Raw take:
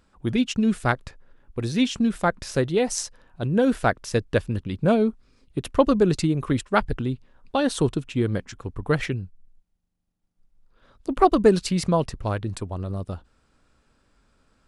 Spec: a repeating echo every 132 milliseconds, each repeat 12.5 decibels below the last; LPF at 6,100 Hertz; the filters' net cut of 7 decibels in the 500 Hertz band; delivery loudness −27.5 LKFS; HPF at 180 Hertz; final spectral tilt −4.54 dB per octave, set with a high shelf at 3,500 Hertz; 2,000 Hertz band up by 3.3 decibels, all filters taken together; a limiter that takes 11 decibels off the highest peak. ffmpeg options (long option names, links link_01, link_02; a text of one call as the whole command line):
ffmpeg -i in.wav -af "highpass=180,lowpass=6100,equalizer=frequency=500:width_type=o:gain=-9,equalizer=frequency=2000:width_type=o:gain=4,highshelf=frequency=3500:gain=5,alimiter=limit=-14dB:level=0:latency=1,aecho=1:1:132|264|396:0.237|0.0569|0.0137,volume=0.5dB" out.wav